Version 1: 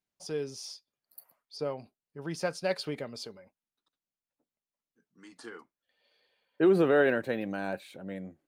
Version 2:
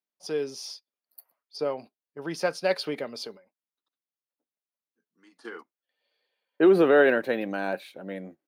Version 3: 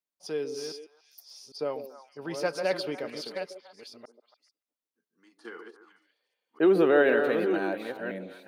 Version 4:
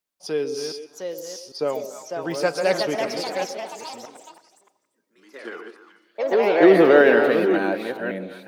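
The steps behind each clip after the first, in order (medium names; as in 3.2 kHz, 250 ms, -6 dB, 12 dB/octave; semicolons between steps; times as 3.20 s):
gate -48 dBFS, range -11 dB; high-pass 240 Hz 12 dB/octave; peaking EQ 7.7 kHz -9 dB 0.44 oct; trim +5.5 dB
chunks repeated in reverse 507 ms, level -7 dB; repeats whose band climbs or falls 143 ms, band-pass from 390 Hz, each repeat 1.4 oct, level -7 dB; trim -3 dB
ever faster or slower copies 757 ms, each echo +3 st, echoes 3, each echo -6 dB; on a send at -22 dB: reverberation RT60 1.7 s, pre-delay 113 ms; on the sum: trim +7 dB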